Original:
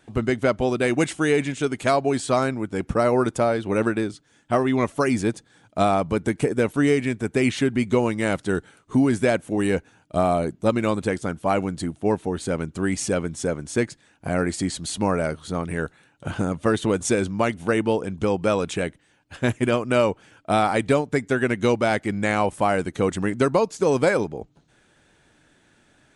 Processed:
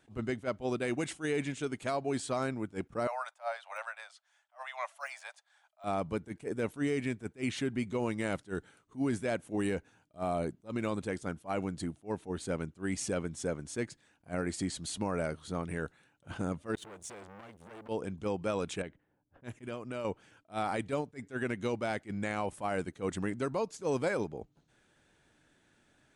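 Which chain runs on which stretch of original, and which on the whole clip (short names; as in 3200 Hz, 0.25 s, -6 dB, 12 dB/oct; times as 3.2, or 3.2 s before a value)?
3.07–5.84 steep high-pass 610 Hz 72 dB/oct + de-esser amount 75% + high shelf 5000 Hz -6.5 dB
16.75–17.89 G.711 law mismatch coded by A + compressor 4:1, threshold -31 dBFS + core saturation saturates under 1900 Hz
18.82–20.05 low-pass opened by the level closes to 530 Hz, open at -19.5 dBFS + compressor 2.5:1, threshold -31 dBFS
whole clip: limiter -14 dBFS; attack slew limiter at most 340 dB/s; gain -9 dB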